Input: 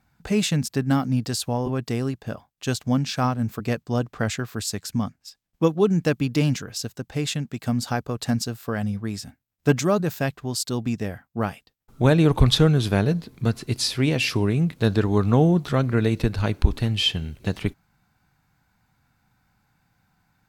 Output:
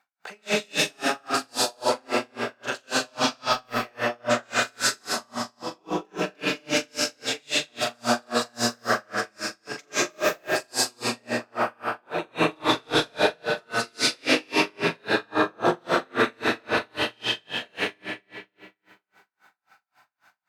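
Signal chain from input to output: high-pass 750 Hz 12 dB/octave; treble shelf 4.8 kHz -9.5 dB; compressor with a negative ratio -31 dBFS, ratio -1; flutter echo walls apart 7.2 m, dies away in 0.78 s; algorithmic reverb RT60 2.1 s, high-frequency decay 0.9×, pre-delay 100 ms, DRR -10 dB; logarithmic tremolo 3.7 Hz, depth 38 dB; trim +2.5 dB

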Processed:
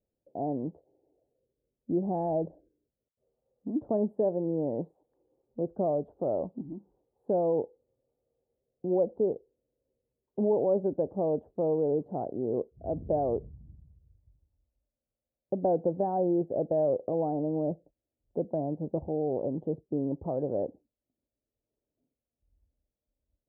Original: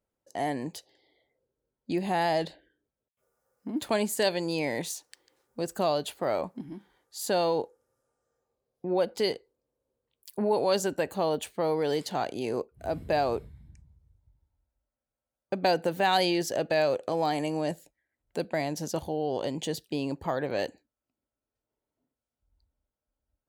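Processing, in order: inverse Chebyshev low-pass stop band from 2.2 kHz, stop band 60 dB; trim +1 dB

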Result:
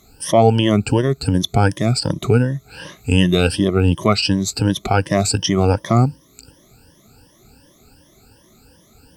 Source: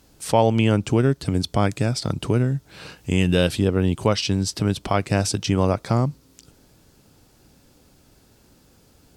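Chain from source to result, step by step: drifting ripple filter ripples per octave 1.2, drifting +2.7 Hz, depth 20 dB; trim +1 dB

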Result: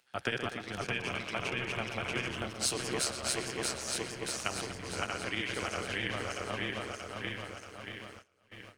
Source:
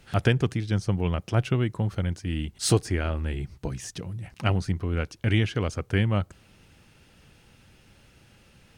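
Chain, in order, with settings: backward echo that repeats 317 ms, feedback 80%, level -1 dB; high-pass 980 Hz 6 dB/octave; tape echo 120 ms, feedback 58%, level -8 dB, low-pass 4.1 kHz; gate with hold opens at -30 dBFS; 0.83–2.28 s: peaking EQ 2.4 kHz +9.5 dB 0.45 oct; compression, threshold -27 dBFS, peak gain reduction 6.5 dB; 4.90–5.41 s: treble shelf 8 kHz -4 dB; upward compressor, threshold -44 dBFS; AM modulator 130 Hz, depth 45%; three bands expanded up and down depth 40%

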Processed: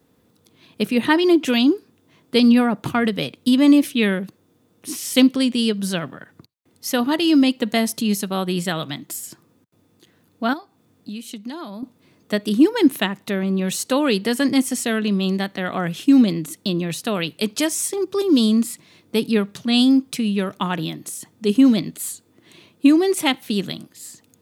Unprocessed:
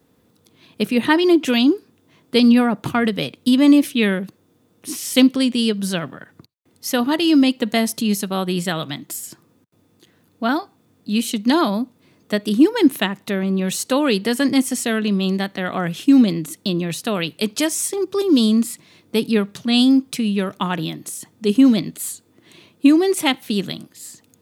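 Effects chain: 10.53–11.83 s: compression 6:1, threshold -30 dBFS, peak gain reduction 16.5 dB; trim -1 dB

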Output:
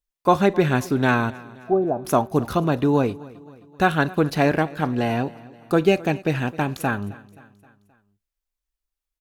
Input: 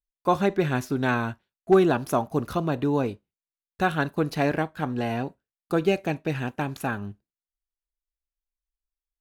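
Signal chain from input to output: 1.30–2.05 s: four-pole ladder low-pass 770 Hz, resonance 55%; feedback delay 263 ms, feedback 53%, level -21 dB; trim +5 dB

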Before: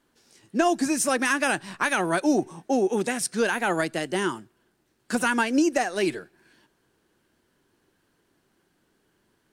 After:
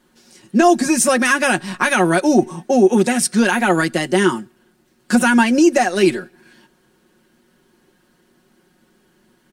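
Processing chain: peaking EQ 240 Hz +9 dB 0.28 oct; in parallel at -1.5 dB: peak limiter -16 dBFS, peak gain reduction 8 dB; on the sum: comb 5.5 ms; trim +2.5 dB

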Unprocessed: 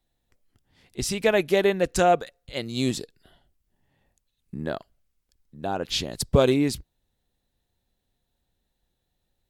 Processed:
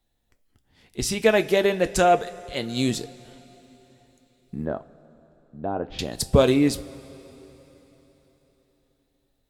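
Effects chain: 4.65–5.99 s: low-pass 1.1 kHz 12 dB/octave; two-slope reverb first 0.22 s, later 4 s, from -21 dB, DRR 9 dB; trim +1.5 dB

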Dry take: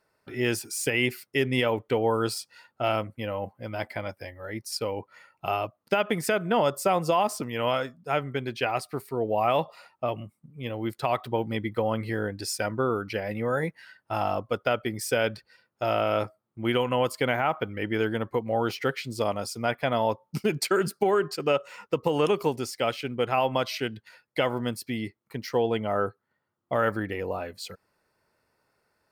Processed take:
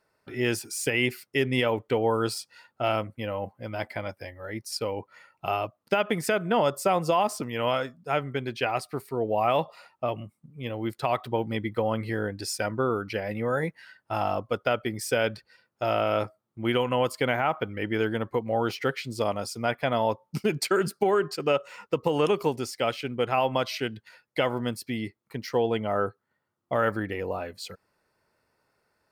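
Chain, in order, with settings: treble shelf 12 kHz -3.5 dB

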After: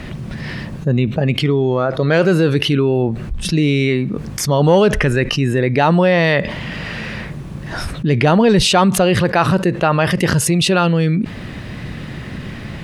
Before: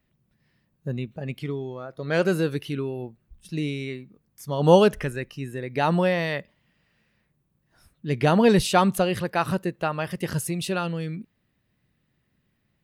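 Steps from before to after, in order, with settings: distance through air 66 m; in parallel at -8 dB: saturation -12 dBFS, distortion -15 dB; on the sum: level flattener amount 70%

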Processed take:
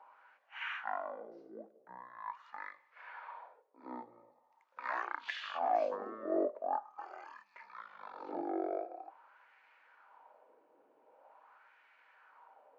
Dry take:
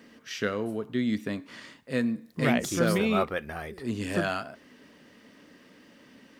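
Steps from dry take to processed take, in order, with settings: LFO band-pass sine 0.88 Hz 710–4100 Hz; speed mistake 15 ips tape played at 7.5 ips; ladder high-pass 400 Hz, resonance 30%; trim +8 dB

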